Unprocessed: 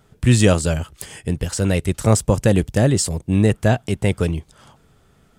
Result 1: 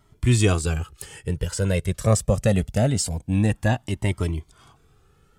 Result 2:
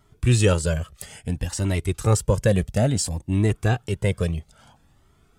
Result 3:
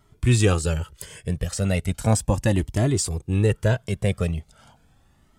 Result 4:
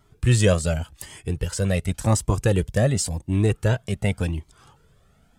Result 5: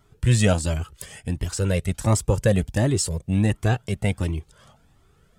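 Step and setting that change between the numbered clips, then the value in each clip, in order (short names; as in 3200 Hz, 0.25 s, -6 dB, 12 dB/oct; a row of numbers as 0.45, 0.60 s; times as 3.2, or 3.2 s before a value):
cascading flanger, rate: 0.24, 0.59, 0.37, 0.9, 1.4 Hz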